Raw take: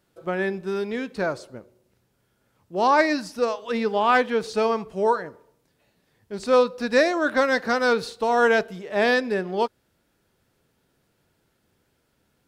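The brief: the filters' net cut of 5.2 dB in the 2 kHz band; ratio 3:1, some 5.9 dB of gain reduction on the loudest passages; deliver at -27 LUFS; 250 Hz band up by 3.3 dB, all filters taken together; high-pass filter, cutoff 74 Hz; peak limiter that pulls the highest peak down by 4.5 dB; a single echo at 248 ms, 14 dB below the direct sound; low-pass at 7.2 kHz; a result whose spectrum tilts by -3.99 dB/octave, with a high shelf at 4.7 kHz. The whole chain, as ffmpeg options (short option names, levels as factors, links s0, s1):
-af "highpass=74,lowpass=7200,equalizer=f=250:t=o:g=4,equalizer=f=2000:t=o:g=-8,highshelf=f=4700:g=5,acompressor=threshold=0.0891:ratio=3,alimiter=limit=0.141:level=0:latency=1,aecho=1:1:248:0.2"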